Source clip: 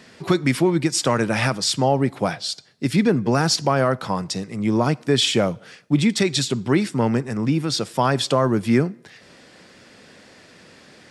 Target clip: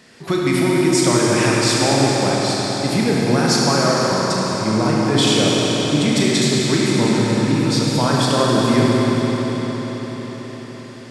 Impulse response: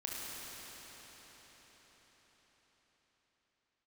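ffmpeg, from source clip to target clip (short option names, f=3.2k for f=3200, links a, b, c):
-filter_complex "[0:a]highshelf=f=6.6k:g=5.5[a];[1:a]atrim=start_sample=2205,asetrate=43659,aresample=44100[b];[a][b]afir=irnorm=-1:irlink=0,volume=1.5dB"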